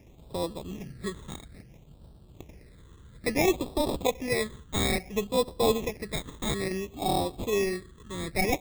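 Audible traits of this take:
aliases and images of a low sample rate 1,500 Hz, jitter 0%
phaser sweep stages 8, 0.59 Hz, lowest notch 690–2,100 Hz

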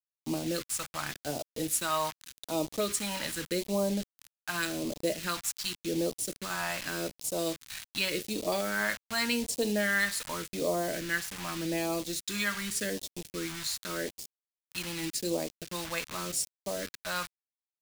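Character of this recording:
a quantiser's noise floor 6 bits, dither none
phaser sweep stages 2, 0.86 Hz, lowest notch 390–1,500 Hz

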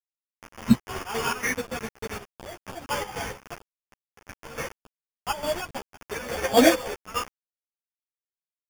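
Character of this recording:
a quantiser's noise floor 6 bits, dither none
chopped level 3.5 Hz, depth 65%, duty 60%
aliases and images of a low sample rate 4,000 Hz, jitter 0%
a shimmering, thickened sound

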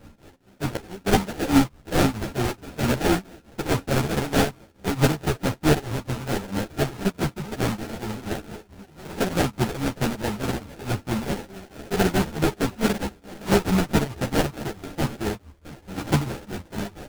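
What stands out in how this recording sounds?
a buzz of ramps at a fixed pitch in blocks of 32 samples
tremolo triangle 4.6 Hz, depth 95%
aliases and images of a low sample rate 1,100 Hz, jitter 20%
a shimmering, thickened sound

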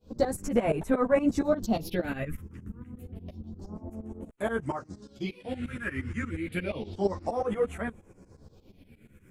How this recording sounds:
phaser sweep stages 4, 0.29 Hz, lowest notch 670–4,700 Hz
tremolo saw up 8.5 Hz, depth 95%
a shimmering, thickened sound

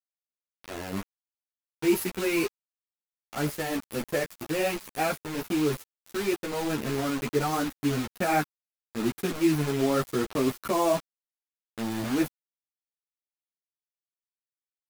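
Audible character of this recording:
a quantiser's noise floor 6 bits, dither none
a shimmering, thickened sound

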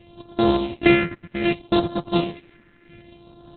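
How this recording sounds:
a buzz of ramps at a fixed pitch in blocks of 128 samples
phaser sweep stages 4, 0.65 Hz, lowest notch 800–2,100 Hz
sample-and-hold tremolo
Opus

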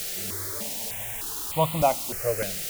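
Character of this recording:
a quantiser's noise floor 6 bits, dither triangular
notches that jump at a steady rate 3.3 Hz 270–1,600 Hz

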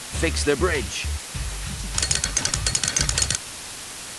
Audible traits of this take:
a quantiser's noise floor 6 bits, dither triangular
AAC

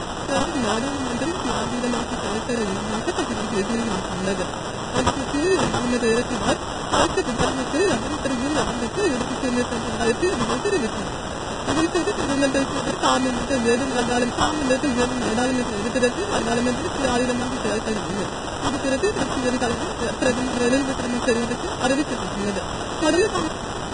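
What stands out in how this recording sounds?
a quantiser's noise floor 6 bits, dither triangular
phaser sweep stages 2, 1.7 Hz, lowest notch 620–2,300 Hz
aliases and images of a low sample rate 2,200 Hz, jitter 0%
Ogg Vorbis

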